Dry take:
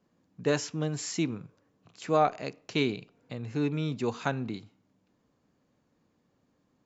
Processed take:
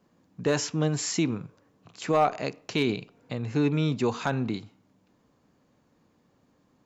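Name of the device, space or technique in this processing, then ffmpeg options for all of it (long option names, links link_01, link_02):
clipper into limiter: -af "asoftclip=type=hard:threshold=-16dB,alimiter=limit=-20.5dB:level=0:latency=1:release=35,equalizer=frequency=950:width_type=o:width=0.77:gain=2,volume=5.5dB"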